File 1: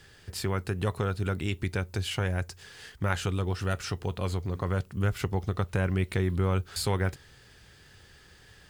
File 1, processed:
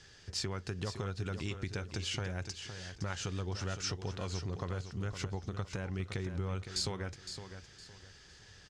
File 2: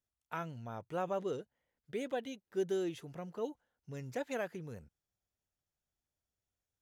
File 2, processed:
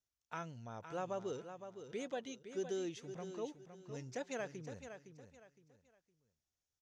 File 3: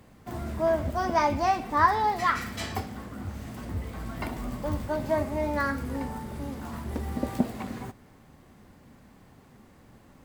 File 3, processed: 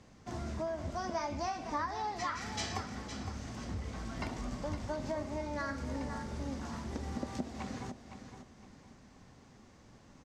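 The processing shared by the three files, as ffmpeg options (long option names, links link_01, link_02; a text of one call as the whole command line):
ffmpeg -i in.wav -filter_complex "[0:a]acompressor=threshold=-29dB:ratio=12,lowpass=frequency=6100:width_type=q:width=2.7,asplit=2[link_01][link_02];[link_02]aecho=0:1:512|1024|1536:0.335|0.0971|0.0282[link_03];[link_01][link_03]amix=inputs=2:normalize=0,volume=-4.5dB" out.wav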